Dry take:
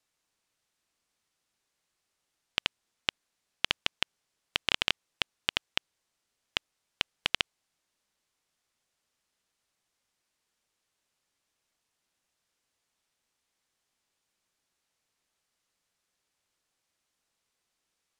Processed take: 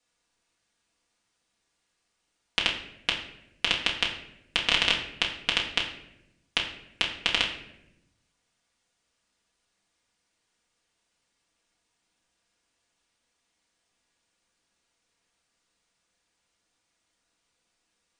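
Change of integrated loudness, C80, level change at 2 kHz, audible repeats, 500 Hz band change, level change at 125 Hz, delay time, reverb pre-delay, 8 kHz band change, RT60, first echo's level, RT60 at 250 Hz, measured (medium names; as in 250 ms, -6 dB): +5.0 dB, 10.0 dB, +5.5 dB, no echo, +6.0 dB, +5.5 dB, no echo, 4 ms, +4.5 dB, 0.85 s, no echo, 1.3 s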